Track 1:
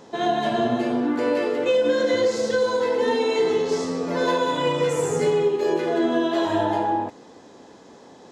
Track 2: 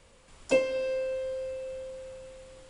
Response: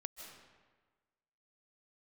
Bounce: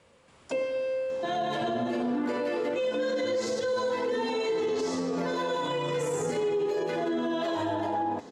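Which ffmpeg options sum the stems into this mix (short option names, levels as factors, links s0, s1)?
-filter_complex "[0:a]flanger=delay=0.5:depth=5.5:regen=-56:speed=0.33:shape=triangular,adelay=1100,volume=0.891[s0];[1:a]highpass=110,highshelf=f=4300:g=-9.5,volume=0.596[s1];[s0][s1]amix=inputs=2:normalize=0,acontrast=32,alimiter=limit=0.0794:level=0:latency=1:release=55"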